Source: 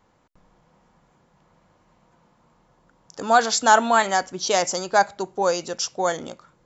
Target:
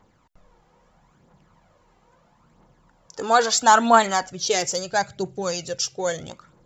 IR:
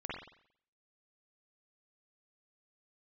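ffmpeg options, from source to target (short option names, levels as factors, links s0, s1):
-filter_complex "[0:a]asettb=1/sr,asplit=3[s0][s1][s2];[s0]atrim=end=4.304[s3];[s1]atrim=start=4.3:end=6.3,asetpts=PTS-STARTPTS,afade=t=in:d=0.004:c=qsin,afade=t=out:st=1.996:d=0.004:c=qsin,equalizer=f=125:t=o:w=1:g=12,equalizer=f=250:t=o:w=1:g=-6,equalizer=f=1000:t=o:w=1:g=-11[s4];[s2]atrim=start=6.296[s5];[s3][s4]acrossfade=d=0.004:c1=hsin:c2=qsin[s6];[s6][s5]acrossfade=d=0.004:c1=qsin:c2=hsin,aphaser=in_gain=1:out_gain=1:delay=2.6:decay=0.49:speed=0.76:type=triangular"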